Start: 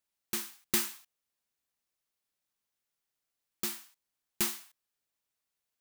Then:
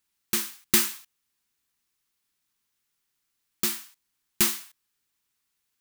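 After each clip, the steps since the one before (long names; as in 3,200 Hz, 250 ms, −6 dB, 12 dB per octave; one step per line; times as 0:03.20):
parametric band 610 Hz −12.5 dB 0.63 octaves
level +8.5 dB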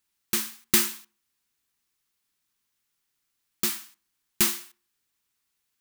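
tape delay 62 ms, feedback 41%, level −17 dB, low-pass 1,800 Hz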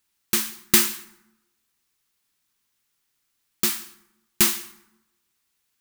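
dense smooth reverb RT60 0.94 s, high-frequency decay 0.6×, pre-delay 100 ms, DRR 19.5 dB
level +4 dB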